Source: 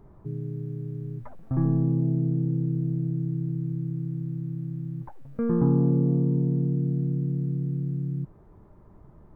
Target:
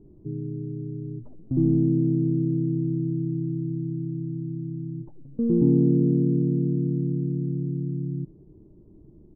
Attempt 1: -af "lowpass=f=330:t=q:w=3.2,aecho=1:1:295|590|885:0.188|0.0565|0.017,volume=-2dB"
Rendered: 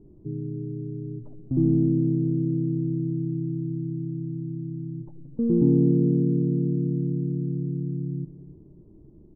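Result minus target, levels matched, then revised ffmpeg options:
echo-to-direct +11 dB
-af "lowpass=f=330:t=q:w=3.2,aecho=1:1:295|590:0.0531|0.0159,volume=-2dB"

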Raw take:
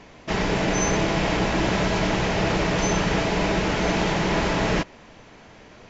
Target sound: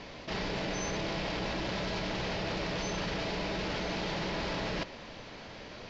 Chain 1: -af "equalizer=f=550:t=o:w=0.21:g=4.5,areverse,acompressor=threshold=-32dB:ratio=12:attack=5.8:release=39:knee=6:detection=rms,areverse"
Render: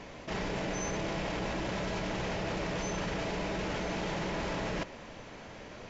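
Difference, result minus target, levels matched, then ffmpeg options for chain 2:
4000 Hz band -4.0 dB
-af "lowpass=f=4.6k:t=q:w=2.3,equalizer=f=550:t=o:w=0.21:g=4.5,areverse,acompressor=threshold=-32dB:ratio=12:attack=5.8:release=39:knee=6:detection=rms,areverse"

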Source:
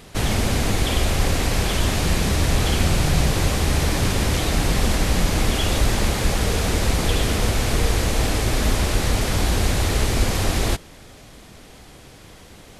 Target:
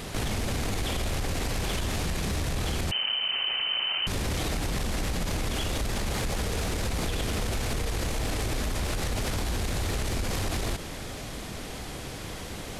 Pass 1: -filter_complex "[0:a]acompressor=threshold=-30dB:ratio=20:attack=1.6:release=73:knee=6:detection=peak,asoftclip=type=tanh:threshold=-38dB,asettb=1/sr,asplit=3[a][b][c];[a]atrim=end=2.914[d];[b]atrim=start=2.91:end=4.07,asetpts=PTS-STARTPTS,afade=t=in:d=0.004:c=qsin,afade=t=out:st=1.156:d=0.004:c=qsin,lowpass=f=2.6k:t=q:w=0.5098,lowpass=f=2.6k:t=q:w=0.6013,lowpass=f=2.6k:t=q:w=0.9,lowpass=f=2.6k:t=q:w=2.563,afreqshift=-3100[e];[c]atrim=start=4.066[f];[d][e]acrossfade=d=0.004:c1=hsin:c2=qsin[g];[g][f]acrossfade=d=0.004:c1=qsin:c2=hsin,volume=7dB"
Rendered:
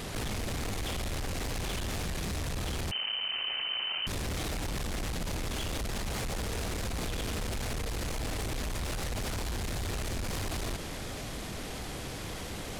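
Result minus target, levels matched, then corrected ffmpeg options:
soft clip: distortion +12 dB
-filter_complex "[0:a]acompressor=threshold=-30dB:ratio=20:attack=1.6:release=73:knee=6:detection=peak,asoftclip=type=tanh:threshold=-27.5dB,asettb=1/sr,asplit=3[a][b][c];[a]atrim=end=2.914[d];[b]atrim=start=2.91:end=4.07,asetpts=PTS-STARTPTS,afade=t=in:d=0.004:c=qsin,afade=t=out:st=1.156:d=0.004:c=qsin,lowpass=f=2.6k:t=q:w=0.5098,lowpass=f=2.6k:t=q:w=0.6013,lowpass=f=2.6k:t=q:w=0.9,lowpass=f=2.6k:t=q:w=2.563,afreqshift=-3100[e];[c]atrim=start=4.066[f];[d][e]acrossfade=d=0.004:c1=hsin:c2=qsin[g];[g][f]acrossfade=d=0.004:c1=qsin:c2=hsin,volume=7dB"

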